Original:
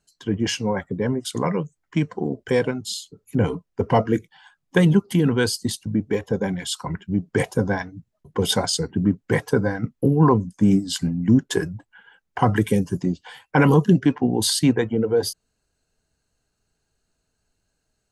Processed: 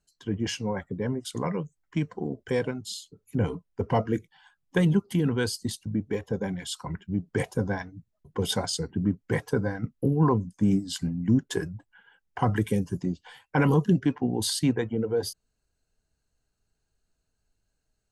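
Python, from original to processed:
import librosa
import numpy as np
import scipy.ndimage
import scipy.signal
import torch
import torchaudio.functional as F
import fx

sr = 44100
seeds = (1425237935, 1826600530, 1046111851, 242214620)

y = fx.low_shelf(x, sr, hz=71.0, db=8.5)
y = y * librosa.db_to_amplitude(-7.0)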